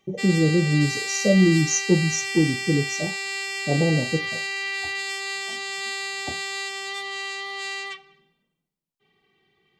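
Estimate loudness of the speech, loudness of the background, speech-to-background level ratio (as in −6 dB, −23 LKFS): −22.0 LKFS, −27.5 LKFS, 5.5 dB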